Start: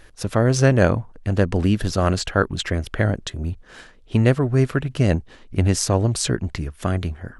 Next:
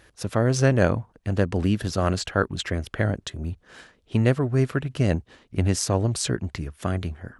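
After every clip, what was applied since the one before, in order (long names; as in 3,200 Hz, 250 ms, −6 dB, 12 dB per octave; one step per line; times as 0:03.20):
high-pass filter 58 Hz
level −3.5 dB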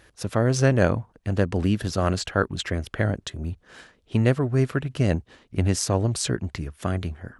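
no processing that can be heard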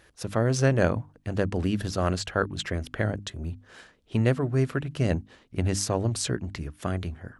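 mains-hum notches 50/100/150/200/250/300 Hz
level −2.5 dB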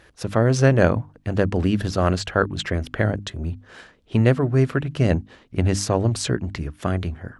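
high-shelf EQ 6,300 Hz −8 dB
level +6 dB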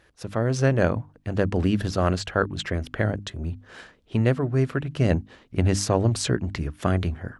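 automatic gain control
level −7 dB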